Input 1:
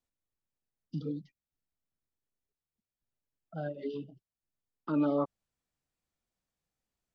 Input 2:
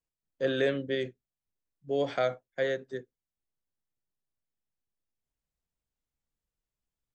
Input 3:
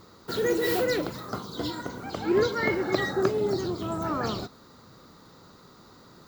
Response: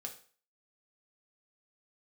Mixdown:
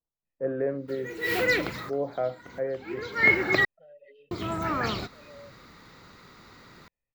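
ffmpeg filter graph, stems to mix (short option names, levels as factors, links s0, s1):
-filter_complex "[0:a]aecho=1:1:1.6:0.8,acompressor=threshold=0.0141:ratio=10,asplit=3[s0][s1][s2];[s0]bandpass=f=530:t=q:w=8,volume=1[s3];[s1]bandpass=f=1840:t=q:w=8,volume=0.501[s4];[s2]bandpass=f=2480:t=q:w=8,volume=0.355[s5];[s3][s4][s5]amix=inputs=3:normalize=0,adelay=250,volume=0.631[s6];[1:a]lowpass=f=1000:w=0.5412,lowpass=f=1000:w=1.3066,volume=0.891,asplit=2[s7][s8];[2:a]lowshelf=f=73:g=9,adelay=600,volume=0.794,asplit=3[s9][s10][s11];[s9]atrim=end=3.65,asetpts=PTS-STARTPTS,afade=t=out:st=3.646:d=0.004:c=hsin[s12];[s10]atrim=start=3.65:end=4.31,asetpts=PTS-STARTPTS,volume=0[s13];[s11]atrim=start=4.31,asetpts=PTS-STARTPTS,afade=t=in:d=0.004:c=hsin[s14];[s12][s13][s14]concat=n=3:v=0:a=1[s15];[s8]apad=whole_len=303365[s16];[s15][s16]sidechaincompress=threshold=0.00447:ratio=16:attack=16:release=297[s17];[s6][s7][s17]amix=inputs=3:normalize=0,equalizer=f=2200:w=1.4:g=14.5"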